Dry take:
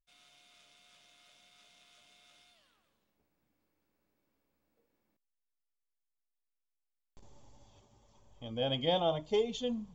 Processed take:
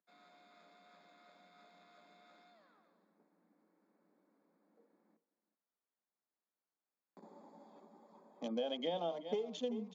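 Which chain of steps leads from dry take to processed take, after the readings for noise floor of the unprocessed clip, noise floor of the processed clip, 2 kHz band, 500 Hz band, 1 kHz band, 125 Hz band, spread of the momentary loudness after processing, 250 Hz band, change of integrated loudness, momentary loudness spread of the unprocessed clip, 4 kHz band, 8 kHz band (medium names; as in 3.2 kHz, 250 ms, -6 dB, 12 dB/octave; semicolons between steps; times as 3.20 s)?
-85 dBFS, under -85 dBFS, -8.5 dB, -6.0 dB, -7.5 dB, -14.5 dB, 21 LU, -4.0 dB, -7.0 dB, 11 LU, -9.5 dB, no reading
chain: local Wiener filter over 15 samples; resampled via 16 kHz; on a send: delay 379 ms -17.5 dB; on the sum: dynamic bell 500 Hz, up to +5 dB, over -42 dBFS, Q 0.83; compression 16:1, threshold -42 dBFS, peak gain reduction 21.5 dB; Chebyshev high-pass 170 Hz, order 8; trim +8 dB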